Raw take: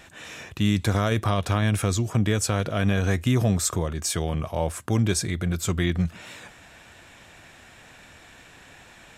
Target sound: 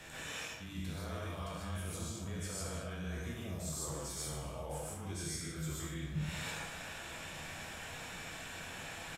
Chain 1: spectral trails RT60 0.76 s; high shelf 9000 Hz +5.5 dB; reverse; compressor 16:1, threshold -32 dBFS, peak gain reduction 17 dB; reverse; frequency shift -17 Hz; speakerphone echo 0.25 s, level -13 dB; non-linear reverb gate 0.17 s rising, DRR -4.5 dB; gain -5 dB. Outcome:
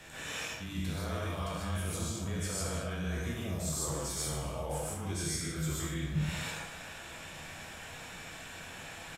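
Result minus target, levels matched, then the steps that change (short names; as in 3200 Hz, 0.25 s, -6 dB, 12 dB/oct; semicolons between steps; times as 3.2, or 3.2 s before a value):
compressor: peak gain reduction -5.5 dB
change: compressor 16:1, threshold -38 dBFS, peak gain reduction 23 dB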